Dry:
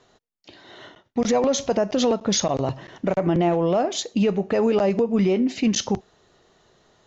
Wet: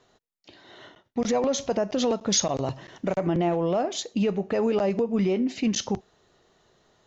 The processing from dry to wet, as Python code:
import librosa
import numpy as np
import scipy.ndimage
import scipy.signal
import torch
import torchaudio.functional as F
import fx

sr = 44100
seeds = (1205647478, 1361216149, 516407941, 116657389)

y = fx.high_shelf(x, sr, hz=5100.0, db=8.0, at=(2.1, 3.28))
y = y * librosa.db_to_amplitude(-4.0)